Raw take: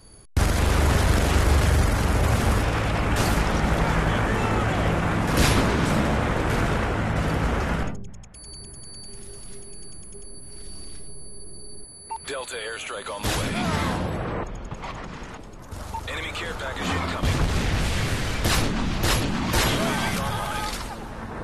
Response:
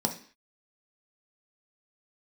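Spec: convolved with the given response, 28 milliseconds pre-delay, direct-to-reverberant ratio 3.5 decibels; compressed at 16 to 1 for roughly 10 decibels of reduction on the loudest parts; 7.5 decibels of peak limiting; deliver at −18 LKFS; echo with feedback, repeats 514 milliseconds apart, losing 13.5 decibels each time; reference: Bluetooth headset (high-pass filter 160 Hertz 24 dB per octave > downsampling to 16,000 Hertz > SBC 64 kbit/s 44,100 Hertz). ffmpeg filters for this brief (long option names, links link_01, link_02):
-filter_complex "[0:a]acompressor=threshold=-25dB:ratio=16,alimiter=limit=-24dB:level=0:latency=1,aecho=1:1:514|1028:0.211|0.0444,asplit=2[link_01][link_02];[1:a]atrim=start_sample=2205,adelay=28[link_03];[link_02][link_03]afir=irnorm=-1:irlink=0,volume=-10.5dB[link_04];[link_01][link_04]amix=inputs=2:normalize=0,highpass=frequency=160:width=0.5412,highpass=frequency=160:width=1.3066,aresample=16000,aresample=44100,volume=13.5dB" -ar 44100 -c:a sbc -b:a 64k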